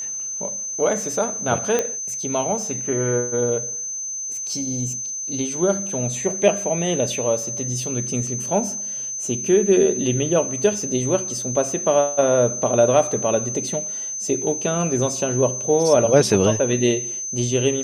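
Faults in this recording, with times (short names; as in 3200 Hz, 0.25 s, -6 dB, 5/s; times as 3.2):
tone 6200 Hz -26 dBFS
1.79 pop -7 dBFS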